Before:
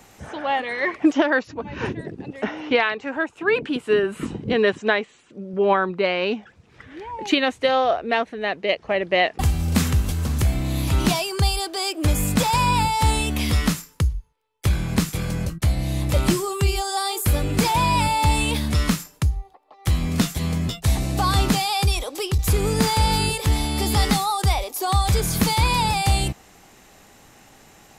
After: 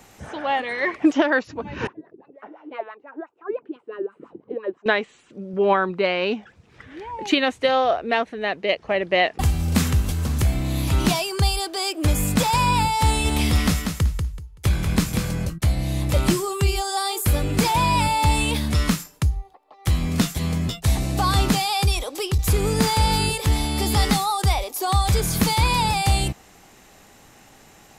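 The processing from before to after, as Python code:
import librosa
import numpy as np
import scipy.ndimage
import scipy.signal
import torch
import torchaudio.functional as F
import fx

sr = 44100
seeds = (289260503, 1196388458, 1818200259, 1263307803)

y = fx.wah_lfo(x, sr, hz=5.9, low_hz=310.0, high_hz=1300.0, q=6.0, at=(1.87, 4.86))
y = fx.echo_feedback(y, sr, ms=190, feedback_pct=24, wet_db=-5.5, at=(13.24, 15.3), fade=0.02)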